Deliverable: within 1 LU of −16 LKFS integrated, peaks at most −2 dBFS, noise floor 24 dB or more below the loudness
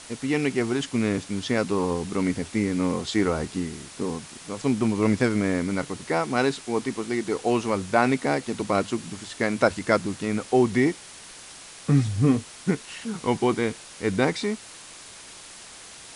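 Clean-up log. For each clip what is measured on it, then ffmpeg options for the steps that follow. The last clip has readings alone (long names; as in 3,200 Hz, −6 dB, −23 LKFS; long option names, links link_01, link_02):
background noise floor −44 dBFS; target noise floor −50 dBFS; integrated loudness −25.5 LKFS; sample peak −6.5 dBFS; target loudness −16.0 LKFS
→ -af "afftdn=noise_reduction=6:noise_floor=-44"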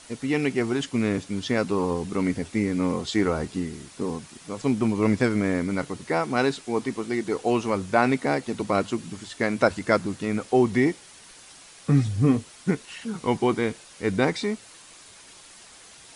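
background noise floor −49 dBFS; target noise floor −50 dBFS
→ -af "afftdn=noise_reduction=6:noise_floor=-49"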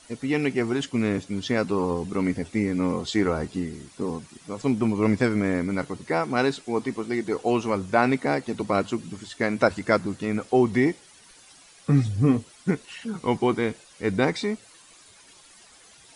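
background noise floor −53 dBFS; integrated loudness −25.5 LKFS; sample peak −6.5 dBFS; target loudness −16.0 LKFS
→ -af "volume=9.5dB,alimiter=limit=-2dB:level=0:latency=1"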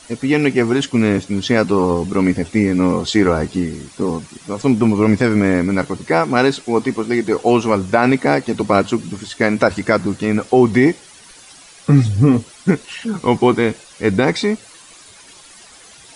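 integrated loudness −16.5 LKFS; sample peak −2.0 dBFS; background noise floor −43 dBFS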